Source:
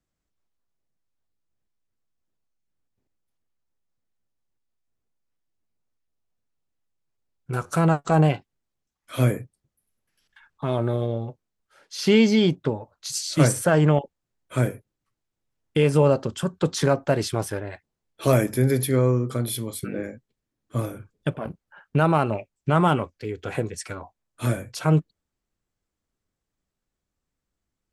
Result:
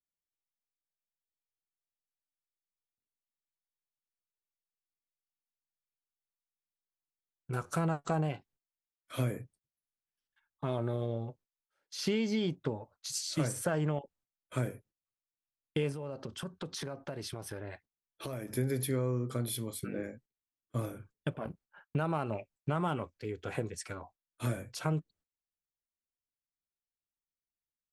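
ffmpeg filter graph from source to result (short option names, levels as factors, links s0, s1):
-filter_complex "[0:a]asettb=1/sr,asplit=3[s0][s1][s2];[s0]atrim=end=15.924[s3];[s1]atrim=start=15.92:end=18.53,asetpts=PTS-STARTPTS,afade=t=in:d=0.004:c=qsin,afade=t=out:st=2.606:d=0.004:c=qsin,equalizer=f=7300:w=6:g=-10,acompressor=threshold=0.0398:ratio=8:attack=3.2:release=140:knee=1:detection=peak[s4];[s2]atrim=start=18.526[s5];[s3][s4]acrossfade=d=0.004:c1=hsin:c2=qsin[s6];[s6][s5]acrossfade=d=0.004:c1=qsin:c2=hsin,agate=range=0.141:threshold=0.00316:ratio=16:detection=peak,acompressor=threshold=0.1:ratio=6,volume=0.422"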